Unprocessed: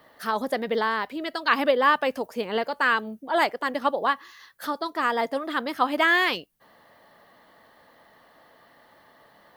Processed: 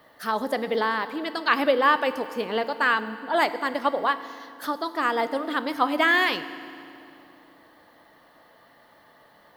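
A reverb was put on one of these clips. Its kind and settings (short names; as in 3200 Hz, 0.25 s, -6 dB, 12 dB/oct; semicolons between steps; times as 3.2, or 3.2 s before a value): FDN reverb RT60 2.6 s, low-frequency decay 1.35×, high-frequency decay 0.9×, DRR 11.5 dB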